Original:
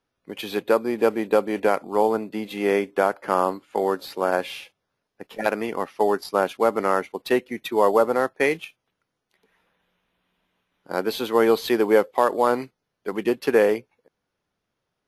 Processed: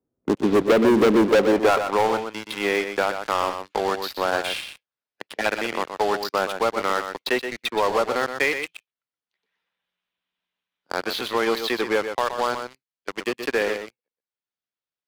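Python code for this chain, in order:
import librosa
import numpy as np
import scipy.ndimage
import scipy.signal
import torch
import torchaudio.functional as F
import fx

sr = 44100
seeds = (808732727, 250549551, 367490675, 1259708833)

p1 = fx.riaa(x, sr, side='playback')
p2 = fx.rider(p1, sr, range_db=10, speed_s=2.0)
p3 = fx.filter_sweep_bandpass(p2, sr, from_hz=340.0, to_hz=4700.0, start_s=1.14, end_s=2.31, q=1.2)
p4 = fx.leveller(p3, sr, passes=5)
p5 = p4 + fx.echo_single(p4, sr, ms=123, db=-9.0, dry=0)
p6 = fx.band_squash(p5, sr, depth_pct=40)
y = p6 * 10.0 ** (-3.5 / 20.0)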